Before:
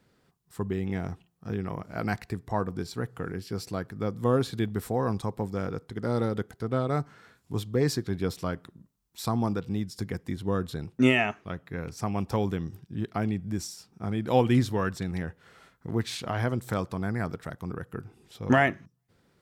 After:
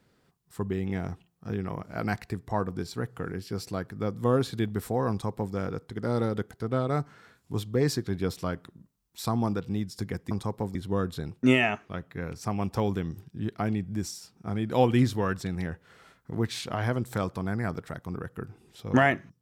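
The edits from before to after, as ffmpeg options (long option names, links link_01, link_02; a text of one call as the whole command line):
ffmpeg -i in.wav -filter_complex "[0:a]asplit=3[link_01][link_02][link_03];[link_01]atrim=end=10.312[link_04];[link_02]atrim=start=5.098:end=5.542[link_05];[link_03]atrim=start=10.308[link_06];[link_04][link_05]acrossfade=duration=0.004:curve1=hsin:curve2=hsin[link_07];[link_07][link_06]acrossfade=duration=0.004:curve1=hsin:curve2=hsin" out.wav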